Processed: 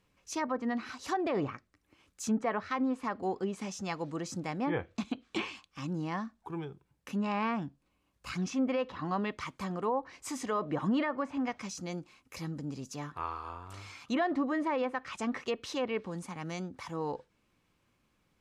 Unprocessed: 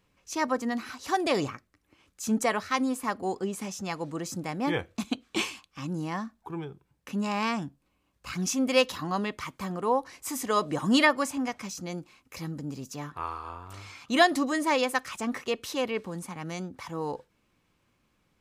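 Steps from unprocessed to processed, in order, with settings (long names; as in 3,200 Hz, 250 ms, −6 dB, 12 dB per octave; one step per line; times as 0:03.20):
treble cut that deepens with the level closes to 1,700 Hz, closed at −23 dBFS
brickwall limiter −19.5 dBFS, peak gain reduction 9.5 dB
level −2.5 dB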